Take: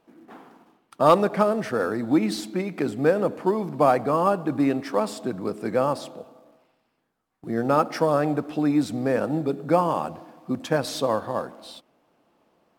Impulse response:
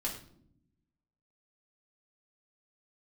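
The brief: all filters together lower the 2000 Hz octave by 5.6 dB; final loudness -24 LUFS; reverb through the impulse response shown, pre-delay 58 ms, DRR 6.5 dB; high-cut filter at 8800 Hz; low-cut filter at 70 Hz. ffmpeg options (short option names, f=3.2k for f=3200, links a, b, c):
-filter_complex "[0:a]highpass=70,lowpass=8.8k,equalizer=f=2k:t=o:g=-8,asplit=2[a][b];[1:a]atrim=start_sample=2205,adelay=58[c];[b][c]afir=irnorm=-1:irlink=0,volume=-9dB[d];[a][d]amix=inputs=2:normalize=0,volume=-0.5dB"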